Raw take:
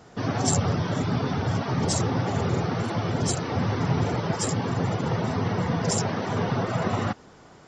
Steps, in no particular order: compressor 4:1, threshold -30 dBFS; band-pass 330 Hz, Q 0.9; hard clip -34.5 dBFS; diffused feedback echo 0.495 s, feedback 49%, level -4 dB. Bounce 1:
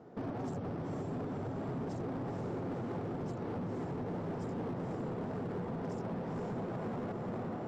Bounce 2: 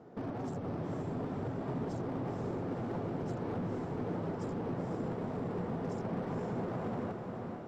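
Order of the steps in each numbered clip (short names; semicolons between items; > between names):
diffused feedback echo > compressor > band-pass > hard clip; compressor > band-pass > hard clip > diffused feedback echo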